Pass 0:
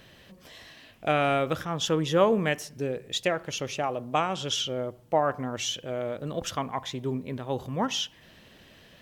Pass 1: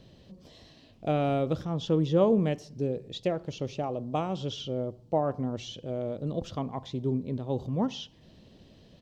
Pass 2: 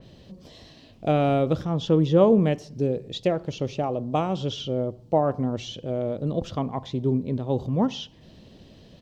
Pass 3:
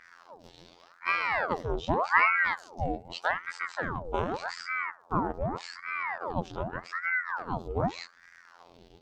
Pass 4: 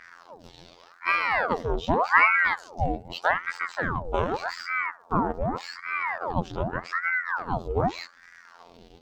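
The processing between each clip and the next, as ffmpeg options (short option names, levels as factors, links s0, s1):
-filter_complex "[0:a]firequalizer=gain_entry='entry(190,0);entry(1600,-19);entry(4300,-6);entry(11000,-21)':delay=0.05:min_phase=1,acrossover=split=4100[s0][s1];[s1]acompressor=threshold=0.00178:ratio=4:attack=1:release=60[s2];[s0][s2]amix=inputs=2:normalize=0,volume=1.41"
-af "adynamicequalizer=threshold=0.00282:dfrequency=3400:dqfactor=0.7:tfrequency=3400:tqfactor=0.7:attack=5:release=100:ratio=0.375:range=1.5:mode=cutabove:tftype=highshelf,volume=1.88"
-af "afftfilt=real='hypot(re,im)*cos(PI*b)':imag='0':win_size=2048:overlap=0.75,aeval=exprs='val(0)*sin(2*PI*1000*n/s+1000*0.8/0.84*sin(2*PI*0.84*n/s))':c=same"
-filter_complex "[0:a]acrossover=split=4000[s0][s1];[s1]asoftclip=type=tanh:threshold=0.0126[s2];[s0][s2]amix=inputs=2:normalize=0,aphaser=in_gain=1:out_gain=1:delay=4.4:decay=0.26:speed=0.29:type=sinusoidal,volume=1.58"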